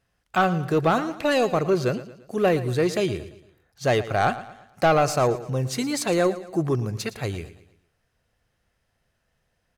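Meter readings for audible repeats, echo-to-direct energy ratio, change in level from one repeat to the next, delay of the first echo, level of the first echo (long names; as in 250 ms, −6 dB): 3, −14.0 dB, −7.5 dB, 114 ms, −15.0 dB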